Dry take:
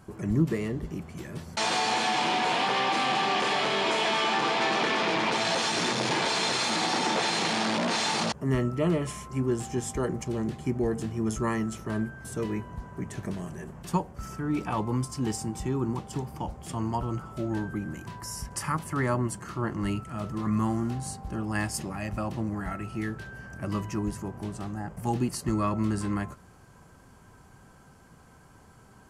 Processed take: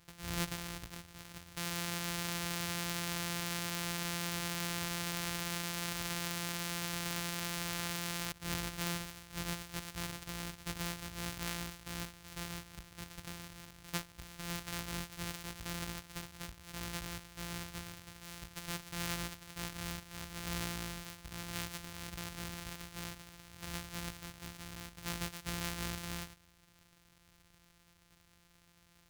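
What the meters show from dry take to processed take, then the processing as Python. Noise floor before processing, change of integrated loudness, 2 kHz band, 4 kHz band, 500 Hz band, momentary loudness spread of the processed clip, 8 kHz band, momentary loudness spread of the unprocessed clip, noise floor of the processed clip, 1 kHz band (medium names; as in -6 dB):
-54 dBFS, -11.0 dB, -10.0 dB, -9.5 dB, -17.0 dB, 11 LU, -4.5 dB, 11 LU, -67 dBFS, -16.0 dB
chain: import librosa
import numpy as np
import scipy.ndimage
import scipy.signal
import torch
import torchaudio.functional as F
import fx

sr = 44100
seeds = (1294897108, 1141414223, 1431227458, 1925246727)

y = np.r_[np.sort(x[:len(x) // 256 * 256].reshape(-1, 256), axis=1).ravel(), x[len(x) // 256 * 256:]]
y = fx.tone_stack(y, sr, knobs='5-5-5')
y = y * 10.0 ** (2.0 / 20.0)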